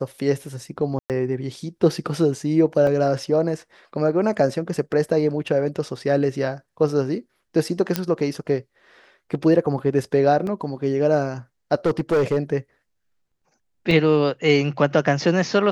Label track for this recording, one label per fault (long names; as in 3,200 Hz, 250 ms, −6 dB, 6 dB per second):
0.990000	1.100000	drop-out 108 ms
2.870000	2.870000	drop-out 2.8 ms
7.960000	7.960000	click −5 dBFS
10.470000	10.470000	drop-out 2.5 ms
11.860000	12.380000	clipping −15 dBFS
13.910000	13.910000	drop-out 2.6 ms